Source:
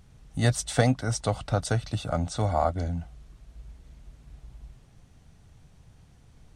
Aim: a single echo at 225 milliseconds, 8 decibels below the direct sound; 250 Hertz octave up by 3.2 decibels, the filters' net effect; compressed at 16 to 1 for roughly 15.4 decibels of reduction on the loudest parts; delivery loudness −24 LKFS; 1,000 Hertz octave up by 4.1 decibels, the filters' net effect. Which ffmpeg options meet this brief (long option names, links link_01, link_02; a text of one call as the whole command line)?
ffmpeg -i in.wav -af "equalizer=frequency=250:width_type=o:gain=3.5,equalizer=frequency=1000:width_type=o:gain=6,acompressor=threshold=-30dB:ratio=16,aecho=1:1:225:0.398,volume=13dB" out.wav